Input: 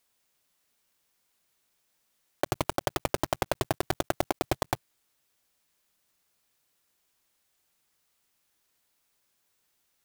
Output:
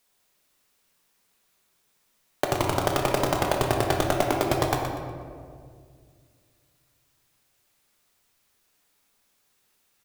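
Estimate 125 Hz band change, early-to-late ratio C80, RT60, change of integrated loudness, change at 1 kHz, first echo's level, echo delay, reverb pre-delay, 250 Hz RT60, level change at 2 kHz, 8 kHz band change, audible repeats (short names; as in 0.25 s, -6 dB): +8.0 dB, 3.0 dB, 2.1 s, +6.0 dB, +6.5 dB, -8.0 dB, 0.121 s, 4 ms, 2.8 s, +6.0 dB, +4.5 dB, 1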